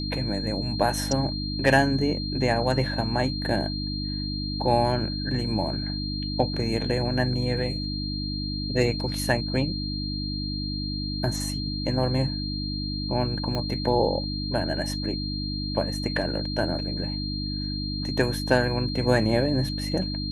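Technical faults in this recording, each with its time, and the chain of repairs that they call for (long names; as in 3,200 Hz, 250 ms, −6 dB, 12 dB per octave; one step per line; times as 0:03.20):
mains hum 50 Hz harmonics 6 −31 dBFS
whistle 4,200 Hz −33 dBFS
0:13.55: click −16 dBFS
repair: click removal
notch filter 4,200 Hz, Q 30
hum removal 50 Hz, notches 6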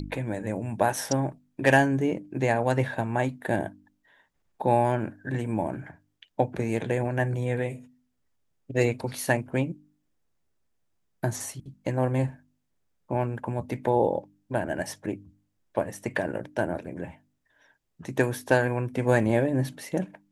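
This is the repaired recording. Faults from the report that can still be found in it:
0:13.55: click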